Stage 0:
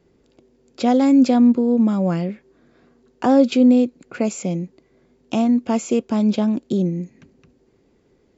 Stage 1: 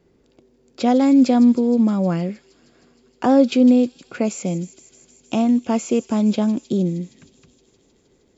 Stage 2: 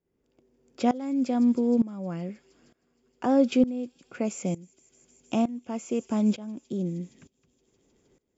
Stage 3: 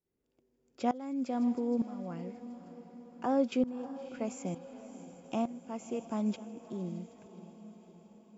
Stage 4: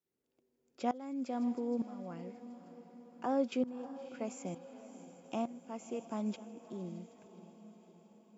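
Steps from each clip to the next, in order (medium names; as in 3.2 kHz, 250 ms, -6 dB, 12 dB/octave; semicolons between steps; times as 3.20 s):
feedback echo behind a high-pass 156 ms, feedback 79%, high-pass 4.5 kHz, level -11.5 dB
peaking EQ 4.1 kHz -7.5 dB 0.35 oct; tremolo saw up 1.1 Hz, depth 90%; trim -4.5 dB
dynamic bell 1 kHz, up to +6 dB, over -41 dBFS, Q 0.89; echo that smears into a reverb 596 ms, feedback 58%, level -14 dB; trim -9 dB
high-pass 180 Hz 6 dB/octave; trim -2.5 dB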